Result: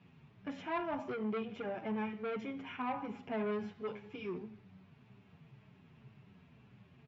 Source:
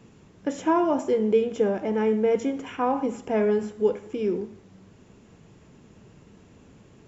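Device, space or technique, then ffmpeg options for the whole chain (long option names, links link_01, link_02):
barber-pole flanger into a guitar amplifier: -filter_complex "[0:a]asettb=1/sr,asplit=3[link_01][link_02][link_03];[link_01]atrim=end=3.474[link_04];[link_02]atrim=start=3.47:end=4.39,asetpts=PTS-STARTPTS,afade=type=in:duration=0.004:curve=qsin,afade=type=out:start_time=0.916:duration=0.004:curve=qsin,equalizer=frequency=4800:width_type=o:width=1.6:gain=4[link_05];[link_03]atrim=start=4.386[link_06];[link_04][link_05]acrossfade=duration=0.004:curve1=hsin:curve2=qsin[link_07];[link_07][link_06]acrossfade=duration=0.004:curve1=qsin:curve2=hsin,asplit=2[link_08][link_09];[link_09]adelay=7.9,afreqshift=-1.9[link_10];[link_08][link_10]amix=inputs=2:normalize=1,asoftclip=type=tanh:threshold=-23dB,highpass=81,equalizer=frequency=130:width_type=q:width=4:gain=8,equalizer=frequency=320:width_type=q:width=4:gain=-10,equalizer=frequency=500:width_type=q:width=4:gain=-10,equalizer=frequency=2400:width_type=q:width=4:gain=5,lowpass=frequency=4100:width=0.5412,lowpass=frequency=4100:width=1.3066,volume=-5dB"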